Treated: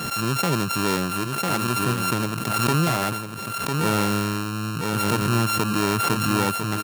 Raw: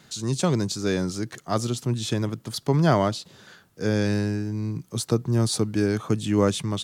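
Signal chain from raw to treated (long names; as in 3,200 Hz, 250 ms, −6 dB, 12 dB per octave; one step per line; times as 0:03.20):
samples sorted by size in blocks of 32 samples
low-shelf EQ 140 Hz −5.5 dB
brickwall limiter −15 dBFS, peak gain reduction 7 dB
single-tap delay 1,000 ms −8.5 dB
background raised ahead of every attack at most 25 dB per second
level +2 dB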